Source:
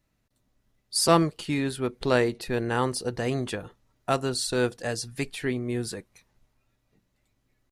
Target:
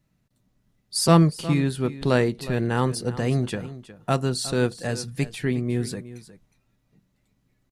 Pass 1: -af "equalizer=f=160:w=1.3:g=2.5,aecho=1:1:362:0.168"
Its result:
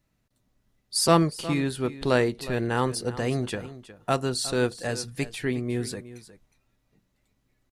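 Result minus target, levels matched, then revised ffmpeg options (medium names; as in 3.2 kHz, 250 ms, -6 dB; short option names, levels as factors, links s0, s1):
125 Hz band -4.0 dB
-af "equalizer=f=160:w=1.3:g=10.5,aecho=1:1:362:0.168"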